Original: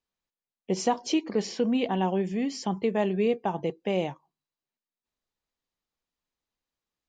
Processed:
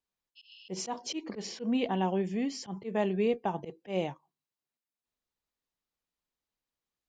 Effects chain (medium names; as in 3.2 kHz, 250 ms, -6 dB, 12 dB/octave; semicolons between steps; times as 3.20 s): spectral replace 0.39–0.68 s, 2.5–5.3 kHz after; slow attack 102 ms; Chebyshev shaper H 4 -42 dB, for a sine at -13.5 dBFS; trim -3 dB